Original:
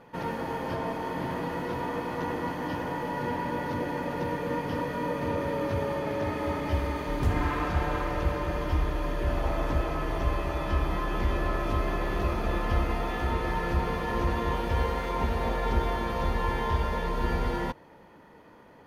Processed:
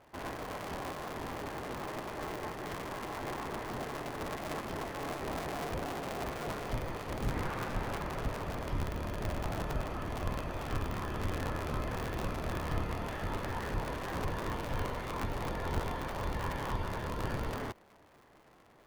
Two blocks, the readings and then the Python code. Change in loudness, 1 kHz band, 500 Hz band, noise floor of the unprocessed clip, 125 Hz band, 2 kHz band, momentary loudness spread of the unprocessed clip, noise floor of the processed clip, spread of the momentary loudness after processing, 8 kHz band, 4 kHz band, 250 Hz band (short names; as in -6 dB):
-7.5 dB, -7.5 dB, -8.0 dB, -53 dBFS, -7.0 dB, -6.0 dB, 4 LU, -61 dBFS, 4 LU, +1.5 dB, -4.0 dB, -8.0 dB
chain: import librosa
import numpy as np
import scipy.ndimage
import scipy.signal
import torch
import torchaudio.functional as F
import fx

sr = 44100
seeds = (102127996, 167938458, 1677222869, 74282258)

y = fx.cycle_switch(x, sr, every=2, mode='inverted')
y = y * librosa.db_to_amplitude(-8.0)